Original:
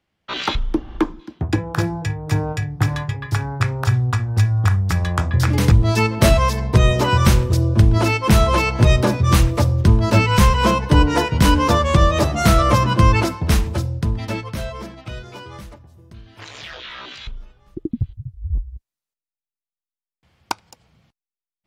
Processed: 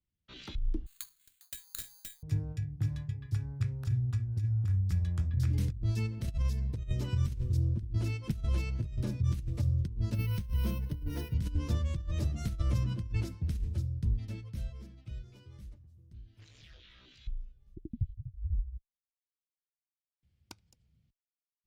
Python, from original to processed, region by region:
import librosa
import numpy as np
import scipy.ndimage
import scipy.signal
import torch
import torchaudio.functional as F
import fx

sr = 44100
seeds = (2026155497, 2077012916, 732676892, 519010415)

y = fx.chain(x, sr, fx.highpass(hz=1200.0, slope=24),
    fx.resample_bad(factor=8, down='none', up='zero_stuff'), at=(0.86, 2.23))
y = fx.chain(y, sr, fx.notch(hz=7100.0, q=17.0),
    fx.resample_bad(factor=3, down='filtered', up='hold'), at=(10.14, 11.34))
y = fx.tone_stack(y, sr, knobs='10-0-1')
y = fx.over_compress(y, sr, threshold_db=-26.0, ratio=-0.5)
y = F.gain(torch.from_numpy(y), -2.5).numpy()